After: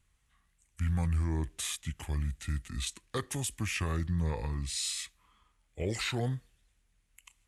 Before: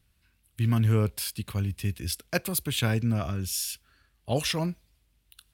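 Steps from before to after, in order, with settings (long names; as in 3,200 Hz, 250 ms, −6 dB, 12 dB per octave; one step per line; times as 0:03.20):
wrong playback speed 45 rpm record played at 33 rpm
brickwall limiter −19 dBFS, peak gain reduction 7 dB
level −3.5 dB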